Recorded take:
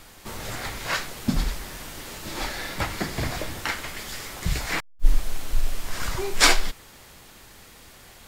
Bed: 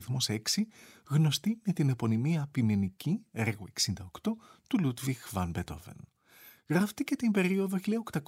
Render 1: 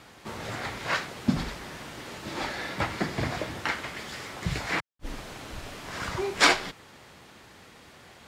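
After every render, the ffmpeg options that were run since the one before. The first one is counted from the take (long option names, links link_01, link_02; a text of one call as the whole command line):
ffmpeg -i in.wav -af "highpass=95,aemphasis=mode=reproduction:type=50fm" out.wav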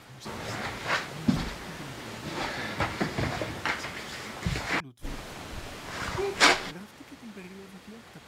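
ffmpeg -i in.wav -i bed.wav -filter_complex "[1:a]volume=-17dB[link_01];[0:a][link_01]amix=inputs=2:normalize=0" out.wav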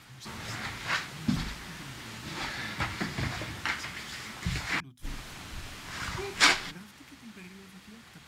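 ffmpeg -i in.wav -af "equalizer=frequency=520:width=0.9:gain=-11,bandreject=frequency=50:width_type=h:width=6,bandreject=frequency=100:width_type=h:width=6,bandreject=frequency=150:width_type=h:width=6,bandreject=frequency=200:width_type=h:width=6,bandreject=frequency=250:width_type=h:width=6" out.wav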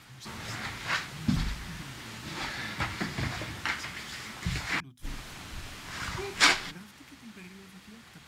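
ffmpeg -i in.wav -filter_complex "[0:a]asettb=1/sr,asplit=3[link_01][link_02][link_03];[link_01]atrim=end=0.864[link_04];[link_02]atrim=start=0.86:end=1.82,asetpts=PTS-STARTPTS,afade=type=in:duration=0.004:curve=qsin,afade=type=out:start_time=0.956:duration=0.004:curve=qsin,asubboost=boost=6.5:cutoff=190[link_05];[link_03]atrim=start=1.816[link_06];[link_04][link_05]acrossfade=duration=0.004:curve1=hsin:curve2=qsin[link_07];[link_07][link_06]acrossfade=duration=0.004:curve1=qsin:curve2=hsin" out.wav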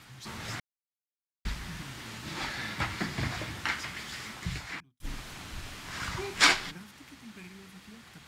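ffmpeg -i in.wav -filter_complex "[0:a]asplit=4[link_01][link_02][link_03][link_04];[link_01]atrim=end=0.6,asetpts=PTS-STARTPTS,afade=type=out:start_time=0.596:duration=0.004:curve=hsin[link_05];[link_02]atrim=start=0.6:end=1.45,asetpts=PTS-STARTPTS,volume=0[link_06];[link_03]atrim=start=1.45:end=5,asetpts=PTS-STARTPTS,afade=type=in:duration=0.004:curve=hsin,afade=type=out:start_time=2.83:duration=0.72[link_07];[link_04]atrim=start=5,asetpts=PTS-STARTPTS,afade=type=in:duration=0.004:curve=hsin[link_08];[link_05][link_06][link_07][link_08]concat=n=4:v=0:a=1" out.wav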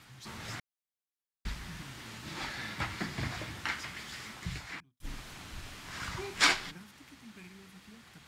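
ffmpeg -i in.wav -af "volume=-3.5dB" out.wav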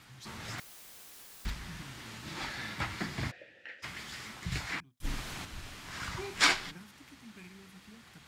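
ffmpeg -i in.wav -filter_complex "[0:a]asettb=1/sr,asplit=3[link_01][link_02][link_03];[link_01]atrim=end=0.584[link_04];[link_02]atrim=start=0.58:end=1.51,asetpts=PTS-STARTPTS,afade=type=in:duration=0.004:curve=qsin,afade=type=out:start_time=0.926:duration=0.004:curve=qsin,aeval=exprs='val(0)+0.5*0.00841*sgn(val(0))':channel_layout=same[link_05];[link_03]atrim=start=1.506[link_06];[link_04][link_05]acrossfade=duration=0.004:curve1=hsin:curve2=qsin[link_07];[link_07][link_06]acrossfade=duration=0.004:curve1=qsin:curve2=hsin,asplit=3[link_08][link_09][link_10];[link_08]afade=type=out:start_time=3.3:duration=0.02[link_11];[link_09]asplit=3[link_12][link_13][link_14];[link_12]bandpass=frequency=530:width_type=q:width=8,volume=0dB[link_15];[link_13]bandpass=frequency=1840:width_type=q:width=8,volume=-6dB[link_16];[link_14]bandpass=frequency=2480:width_type=q:width=8,volume=-9dB[link_17];[link_15][link_16][link_17]amix=inputs=3:normalize=0,afade=type=in:start_time=3.3:duration=0.02,afade=type=out:start_time=3.82:duration=0.02[link_18];[link_10]afade=type=in:start_time=3.82:duration=0.02[link_19];[link_11][link_18][link_19]amix=inputs=3:normalize=0,asplit=3[link_20][link_21][link_22];[link_20]atrim=end=4.522[link_23];[link_21]atrim=start=4.518:end=5.452,asetpts=PTS-STARTPTS,volume=6dB[link_24];[link_22]atrim=start=5.448[link_25];[link_23][link_24]acrossfade=duration=0.004:curve1=hsin:curve2=hsin[link_26];[link_26][link_25]acrossfade=duration=0.004:curve1=hsin:curve2=hsin" out.wav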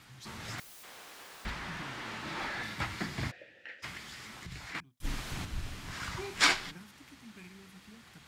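ffmpeg -i in.wav -filter_complex "[0:a]asettb=1/sr,asplit=3[link_01][link_02][link_03];[link_01]atrim=end=0.834[link_04];[link_02]atrim=start=0.83:end=2.63,asetpts=PTS-STARTPTS,afade=type=in:duration=0.004:curve=qsin,afade=type=out:start_time=1.796:duration=0.004:curve=qsin,asplit=2[link_05][link_06];[link_06]highpass=frequency=720:poles=1,volume=21dB,asoftclip=type=tanh:threshold=-25.5dB[link_07];[link_05][link_07]amix=inputs=2:normalize=0,lowpass=frequency=1200:poles=1,volume=-6dB[link_08];[link_03]atrim=start=2.626[link_09];[link_04][link_08]acrossfade=duration=0.004:curve1=hsin:curve2=qsin[link_10];[link_10][link_09]acrossfade=duration=0.004:curve1=qsin:curve2=hsin,asettb=1/sr,asplit=3[link_11][link_12][link_13];[link_11]atrim=end=3.974[link_14];[link_12]atrim=start=3.97:end=4.75,asetpts=PTS-STARTPTS,afade=type=in:duration=0.004:curve=qsin,afade=type=out:start_time=0.776:duration=0.004:curve=qsin,acompressor=threshold=-43dB:ratio=3:attack=3.2:release=140:knee=1:detection=peak[link_15];[link_13]atrim=start=4.746[link_16];[link_14][link_15]acrossfade=duration=0.004:curve1=hsin:curve2=qsin[link_17];[link_17][link_16]acrossfade=duration=0.004:curve1=qsin:curve2=hsin,asettb=1/sr,asplit=3[link_18][link_19][link_20];[link_18]atrim=end=5.314[link_21];[link_19]atrim=start=5.31:end=5.94,asetpts=PTS-STARTPTS,afade=type=in:duration=0.004:curve=qsin,afade=type=out:start_time=0.626:duration=0.004:curve=qsin,lowshelf=frequency=240:gain=9[link_22];[link_20]atrim=start=5.936[link_23];[link_21][link_22]acrossfade=duration=0.004:curve1=hsin:curve2=qsin[link_24];[link_24][link_23]acrossfade=duration=0.004:curve1=qsin:curve2=hsin" out.wav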